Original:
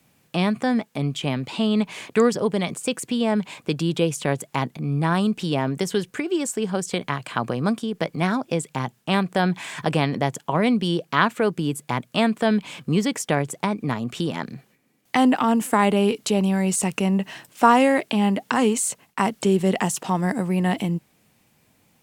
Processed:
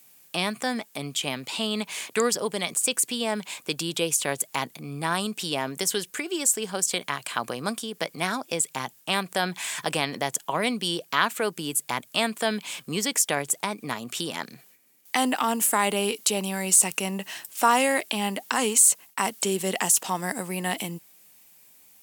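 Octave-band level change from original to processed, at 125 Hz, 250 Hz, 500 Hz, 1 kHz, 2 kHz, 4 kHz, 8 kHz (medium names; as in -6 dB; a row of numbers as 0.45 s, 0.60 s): -12.0 dB, -10.0 dB, -5.5 dB, -3.5 dB, -1.0 dB, +2.5 dB, +8.0 dB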